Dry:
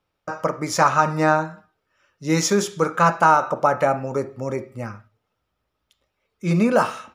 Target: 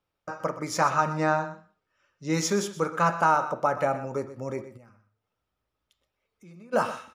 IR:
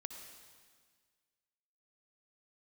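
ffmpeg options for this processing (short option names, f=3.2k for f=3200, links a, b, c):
-filter_complex "[0:a]asettb=1/sr,asplit=3[a][b][c];[a]atrim=end=1.144[d];[b]atrim=start=1.14:end=2.34,asetpts=PTS-STARTPTS,afade=t=in:d=0.004:c=qsin,afade=t=out:st=1.196:d=0.004:c=qsin,lowpass=f=8.2k:w=0.5412,lowpass=f=8.2k:w=1.3066[e];[c]atrim=start=2.336[f];[d][e]acrossfade=d=0.004:c1=hsin:c2=qsin[g];[g][f]acrossfade=d=0.004:c1=qsin:c2=hsin,asplit=3[h][i][j];[h]afade=t=out:st=4.76:d=0.02[k];[i]acompressor=threshold=-50dB:ratio=3,afade=t=in:st=4.76:d=0.02,afade=t=out:st=6.72:d=0.02[l];[j]afade=t=in:st=6.72:d=0.02[m];[k][l][m]amix=inputs=3:normalize=0,aecho=1:1:124:0.2,volume=-6.5dB"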